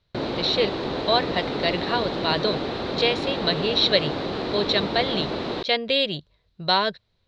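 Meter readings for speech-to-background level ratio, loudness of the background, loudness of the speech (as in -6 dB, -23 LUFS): 4.5 dB, -28.5 LUFS, -24.0 LUFS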